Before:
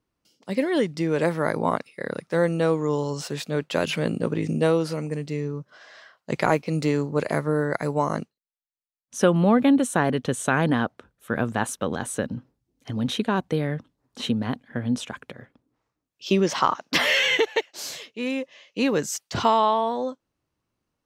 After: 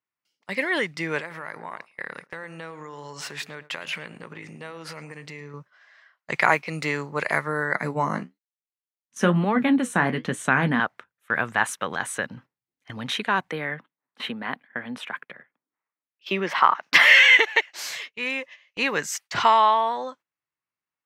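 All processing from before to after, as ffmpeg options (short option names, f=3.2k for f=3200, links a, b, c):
-filter_complex "[0:a]asettb=1/sr,asplit=3[a][b][c];[a]atrim=end=1.194[d];[b]atrim=start=1.19:end=5.54,asetpts=PTS-STARTPTS,afade=t=in:d=0.004:c=qsin,afade=t=out:st=4.346:d=0.004:c=qsin,acompressor=threshold=-30dB:ratio=16:attack=3.2:release=140:knee=1:detection=peak,asplit=2[e][f];[f]adelay=109,lowpass=f=1.5k:p=1,volume=-14dB,asplit=2[g][h];[h]adelay=109,lowpass=f=1.5k:p=1,volume=0.38,asplit=2[i][j];[j]adelay=109,lowpass=f=1.5k:p=1,volume=0.38,asplit=2[k][l];[l]adelay=109,lowpass=f=1.5k:p=1,volume=0.38[m];[e][g][i][k][m]amix=inputs=5:normalize=0,atrim=end_sample=191835[n];[c]atrim=start=5.536[o];[d][n]acrossfade=d=0.004:c1=hsin:c2=qsin[p];[p][o]acrossfade=d=0.004:c1=qsin:c2=hsin,asettb=1/sr,asplit=3[q][r][s];[q]atrim=end=7.734[t];[r]atrim=start=7.73:end=10.8,asetpts=PTS-STARTPTS,afade=t=in:d=0.004:c=qsin,afade=t=out:st=3.066:d=0.004:c=qsin,equalizer=f=210:w=0.92:g=15,flanger=delay=6.2:depth=9.7:regen=-55:speed=1.1:shape=triangular[u];[s]atrim=start=10.796[v];[t][u]acrossfade=d=0.004:c1=hsin:c2=qsin[w];[w][v]acrossfade=d=0.004:c1=qsin:c2=hsin,asettb=1/sr,asplit=3[x][y][z];[x]atrim=end=13.514[aa];[y]atrim=start=13.51:end=16.83,asetpts=PTS-STARTPTS,afade=t=in:d=0.004:c=qsin,afade=t=out:st=3.316:d=0.004:c=qsin,highpass=f=160:w=0.5412,highpass=f=160:w=1.3066,equalizer=f=6.6k:t=o:w=1.1:g=-14.5[ab];[z]atrim=start=16.826[ac];[aa][ab]acrossfade=d=0.004:c1=hsin:c2=qsin[ad];[ad][ac]acrossfade=d=0.004:c1=qsin:c2=hsin,highpass=160,agate=range=-14dB:threshold=-42dB:ratio=16:detection=peak,equalizer=f=250:t=o:w=1:g=-8,equalizer=f=500:t=o:w=1:g=-4,equalizer=f=1k:t=o:w=1:g=4,equalizer=f=2k:t=o:w=1:g=11,volume=-1dB"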